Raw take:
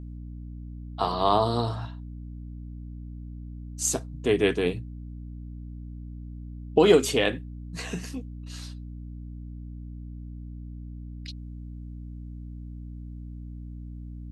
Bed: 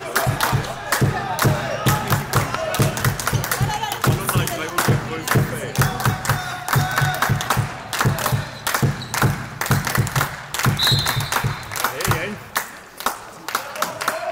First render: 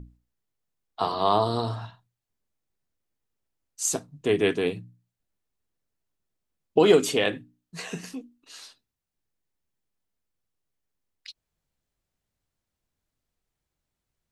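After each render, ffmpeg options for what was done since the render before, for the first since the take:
-af "bandreject=f=60:t=h:w=6,bandreject=f=120:t=h:w=6,bandreject=f=180:t=h:w=6,bandreject=f=240:t=h:w=6,bandreject=f=300:t=h:w=6"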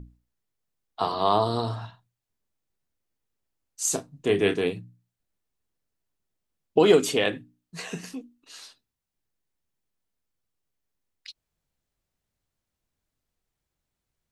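-filter_complex "[0:a]asettb=1/sr,asplit=3[a][b][c];[a]atrim=end=3.844[d];[b]atrim=start=3.84:end=4.64,asetpts=PTS-STARTPTS,afade=t=in:d=0.004:c=qsin,afade=t=out:st=0.796:d=0.004:c=qsin,asplit=2[e][f];[f]adelay=30,volume=-9dB[g];[e][g]amix=inputs=2:normalize=0,atrim=end_sample=35280[h];[c]atrim=start=4.636[i];[d][h]acrossfade=d=0.004:c1=hsin:c2=qsin[j];[j][i]acrossfade=d=0.004:c1=qsin:c2=hsin"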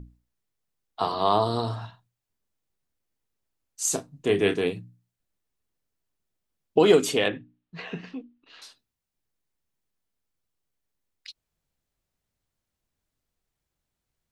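-filter_complex "[0:a]asettb=1/sr,asplit=3[a][b][c];[a]atrim=end=7.284[d];[b]atrim=start=7.28:end=8.62,asetpts=PTS-STARTPTS,afade=t=in:d=0.004:c=qsin,afade=t=out:st=1.336:d=0.004:c=qsin,lowpass=f=3.5k:w=0.5412,lowpass=f=3.5k:w=1.3066[e];[c]atrim=start=8.616[f];[d][e]acrossfade=d=0.004:c1=hsin:c2=qsin[g];[g][f]acrossfade=d=0.004:c1=qsin:c2=hsin"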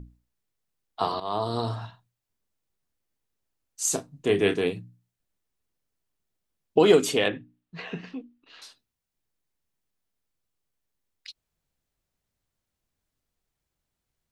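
-filter_complex "[0:a]asplit=2[a][b];[a]atrim=end=1.2,asetpts=PTS-STARTPTS,afade=t=out:st=1.196:d=0.004:c=hsin:silence=0.16788[c];[b]atrim=start=1.2,asetpts=PTS-STARTPTS,afade=t=in:d=0.45:silence=0.16788[d];[c][d]concat=n=2:v=0:a=1"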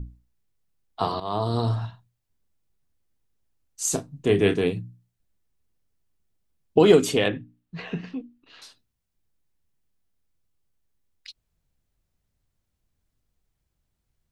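-af "lowshelf=f=200:g=10.5"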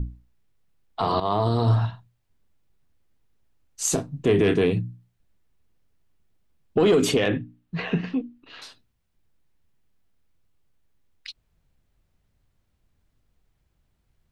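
-filter_complex "[0:a]acrossover=split=3900[a][b];[a]acontrast=84[c];[c][b]amix=inputs=2:normalize=0,alimiter=limit=-12dB:level=0:latency=1:release=52"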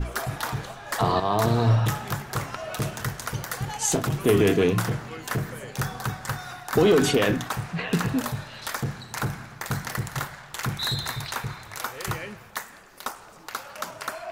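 -filter_complex "[1:a]volume=-10.5dB[a];[0:a][a]amix=inputs=2:normalize=0"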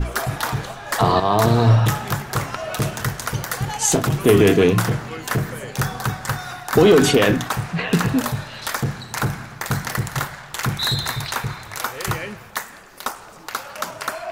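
-af "volume=6dB"

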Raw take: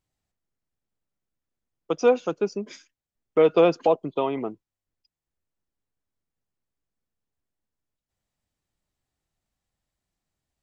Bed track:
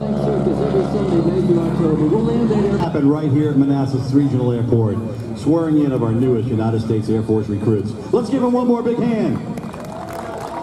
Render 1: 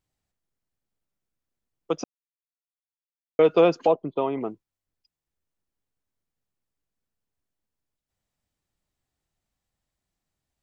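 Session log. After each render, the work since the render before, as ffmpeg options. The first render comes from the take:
-filter_complex "[0:a]asettb=1/sr,asplit=3[a][b][c];[a]atrim=end=3.914[d];[b]atrim=start=3.91:end=4.41,asetpts=PTS-STARTPTS,afade=t=in:d=0.004:c=qsin,afade=t=out:st=0.496:d=0.004:c=qsin,lowpass=f=1.9k:p=1[e];[c]atrim=start=4.406[f];[d][e]acrossfade=d=0.004:c1=hsin:c2=qsin[g];[g][f]acrossfade=d=0.004:c1=qsin:c2=hsin,asplit=3[h][i][j];[h]atrim=end=2.04,asetpts=PTS-STARTPTS,afade=t=out:st=2.036:d=0.004:c=hsin[k];[i]atrim=start=2.04:end=3.39,asetpts=PTS-STARTPTS,volume=0[l];[j]atrim=start=3.39,asetpts=PTS-STARTPTS,afade=t=in:d=0.004:c=hsin[m];[k][l][m]concat=n=3:v=0:a=1"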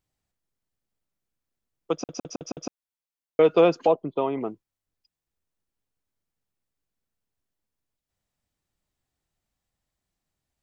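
-filter_complex "[0:a]asplit=6[a][b][c][d][e][f];[a]atrim=end=2.092[g];[b]atrim=start=1.928:end=2.092[h];[c]atrim=start=1.928:end=2.092[i];[d]atrim=start=1.928:end=2.092[j];[e]atrim=start=1.928:end=2.092[k];[f]atrim=start=2.728[l];[g][h]acrossfade=d=0.004:c1=hsin:c2=hsin[m];[m][i]acrossfade=d=0.004:c1=hsin:c2=hsin[n];[n][j]acrossfade=d=0.004:c1=hsin:c2=hsin[o];[o][k]acrossfade=d=0.004:c1=hsin:c2=hsin[p];[p][l]acrossfade=d=0.004:c1=hsin:c2=hsin"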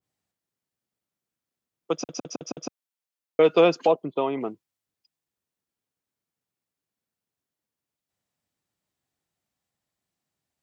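-af "highpass=120,adynamicequalizer=threshold=0.0158:dfrequency=1700:dqfactor=0.7:tfrequency=1700:tqfactor=0.7:attack=5:release=100:ratio=0.375:range=2.5:mode=boostabove:tftype=highshelf"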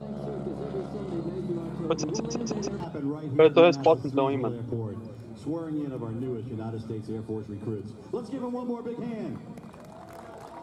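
-filter_complex "[1:a]volume=-16.5dB[a];[0:a][a]amix=inputs=2:normalize=0"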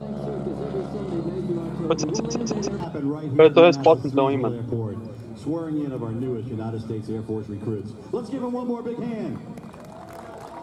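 -af "volume=5dB,alimiter=limit=-3dB:level=0:latency=1"

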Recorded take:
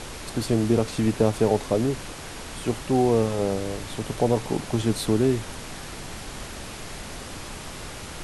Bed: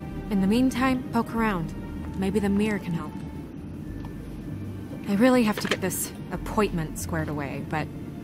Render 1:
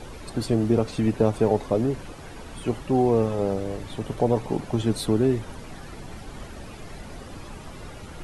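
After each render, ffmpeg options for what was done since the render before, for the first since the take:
-af "afftdn=nr=11:nf=-38"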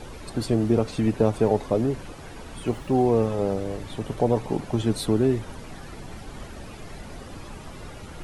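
-filter_complex "[0:a]asettb=1/sr,asplit=3[a][b][c];[a]atrim=end=2.664[d];[b]atrim=start=2.66:end=3.06,asetpts=PTS-STARTPTS,afade=t=in:d=0.004:c=qsin,afade=t=out:st=0.396:d=0.004:c=qsin,aeval=exprs='val(0)*gte(abs(val(0)),0.00355)':c=same[e];[c]atrim=start=3.056[f];[d][e]acrossfade=d=0.004:c1=hsin:c2=qsin[g];[g][f]acrossfade=d=0.004:c1=qsin:c2=hsin"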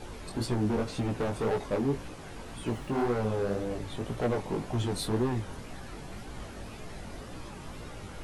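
-af "asoftclip=type=hard:threshold=-22dB,flanger=delay=16:depth=6:speed=1.9"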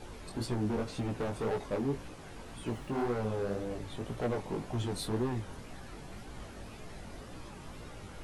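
-af "volume=-4dB"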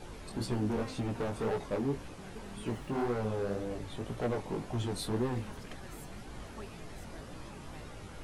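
-filter_complex "[1:a]volume=-25.5dB[a];[0:a][a]amix=inputs=2:normalize=0"

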